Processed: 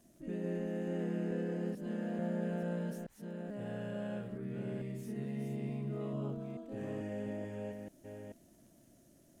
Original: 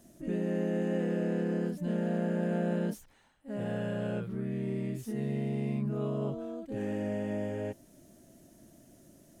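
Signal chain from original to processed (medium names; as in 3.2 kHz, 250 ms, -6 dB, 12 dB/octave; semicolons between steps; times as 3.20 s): chunks repeated in reverse 438 ms, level -5.5 dB; crackle 52 per s -52 dBFS; trim -7 dB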